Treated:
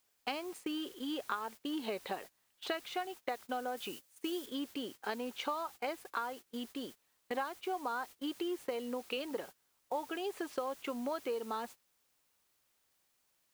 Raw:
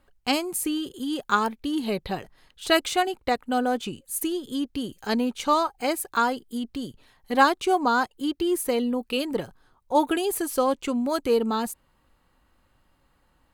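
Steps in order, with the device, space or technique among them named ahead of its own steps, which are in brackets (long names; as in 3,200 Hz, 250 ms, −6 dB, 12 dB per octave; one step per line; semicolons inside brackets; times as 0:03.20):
baby monitor (band-pass filter 410–3,200 Hz; downward compressor 10 to 1, threshold −32 dBFS, peak gain reduction 20 dB; white noise bed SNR 17 dB; noise gate −46 dBFS, range −19 dB)
0:03.77–0:04.46: high-shelf EQ 4,300 Hz +7.5 dB
level −2 dB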